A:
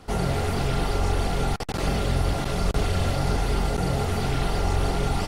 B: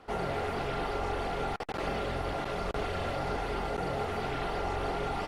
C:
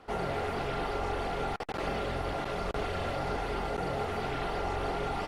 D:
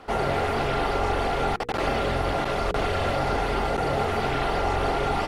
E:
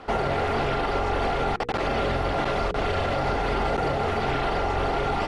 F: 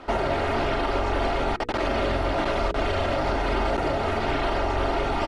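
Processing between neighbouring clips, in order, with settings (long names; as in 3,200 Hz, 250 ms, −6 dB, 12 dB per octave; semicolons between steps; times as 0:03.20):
bass and treble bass −12 dB, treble −14 dB; level −3 dB
no processing that can be heard
mains-hum notches 60/120/180/240/300/360/420/480 Hz; level +8.5 dB
high-shelf EQ 8,800 Hz +5 dB; brickwall limiter −19.5 dBFS, peak gain reduction 6.5 dB; high-frequency loss of the air 70 metres; level +3.5 dB
comb filter 3.2 ms, depth 47%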